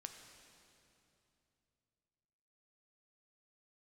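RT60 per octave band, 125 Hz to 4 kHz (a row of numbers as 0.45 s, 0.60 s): 3.7 s, 3.3 s, 3.0 s, 2.7 s, 2.5 s, 2.5 s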